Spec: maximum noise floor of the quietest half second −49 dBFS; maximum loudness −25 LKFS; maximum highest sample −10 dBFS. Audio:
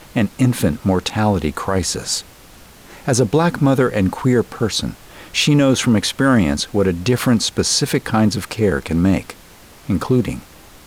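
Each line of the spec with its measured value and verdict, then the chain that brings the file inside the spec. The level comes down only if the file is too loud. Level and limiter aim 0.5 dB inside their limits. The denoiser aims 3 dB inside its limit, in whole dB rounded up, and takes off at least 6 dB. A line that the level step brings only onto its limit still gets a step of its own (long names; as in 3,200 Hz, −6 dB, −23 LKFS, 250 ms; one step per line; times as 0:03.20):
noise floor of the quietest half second −43 dBFS: out of spec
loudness −17.5 LKFS: out of spec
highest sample −5.0 dBFS: out of spec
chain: level −8 dB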